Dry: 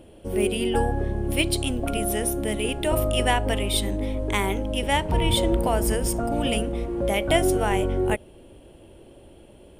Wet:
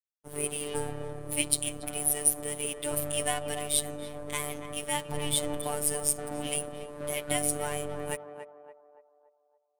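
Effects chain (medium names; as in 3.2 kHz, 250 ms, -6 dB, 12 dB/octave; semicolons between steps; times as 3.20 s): peaking EQ 9.9 kHz +14 dB 1.1 oct; crossover distortion -31 dBFS; robot voice 147 Hz; on a send: band-passed feedback delay 284 ms, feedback 50%, band-pass 700 Hz, level -7 dB; on the sum: trim -6 dB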